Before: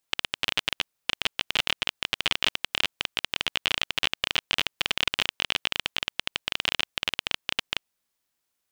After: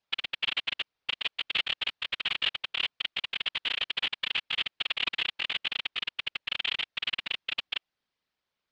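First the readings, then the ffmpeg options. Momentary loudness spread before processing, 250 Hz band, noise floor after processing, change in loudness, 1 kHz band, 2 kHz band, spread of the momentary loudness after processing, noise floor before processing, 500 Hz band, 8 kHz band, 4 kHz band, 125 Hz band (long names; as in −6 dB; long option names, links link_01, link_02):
5 LU, −11.0 dB, below −85 dBFS, −3.0 dB, −7.0 dB, −3.0 dB, 5 LU, −80 dBFS, −10.0 dB, below −15 dB, −3.0 dB, −11.5 dB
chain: -af "aeval=exprs='0.316*(abs(mod(val(0)/0.316+3,4)-2)-1)':channel_layout=same,afftfilt=real='hypot(re,im)*cos(2*PI*random(0))':imag='hypot(re,im)*sin(2*PI*random(1))':win_size=512:overlap=0.75,lowpass=frequency=4600:width=0.5412,lowpass=frequency=4600:width=1.3066,volume=5.5dB"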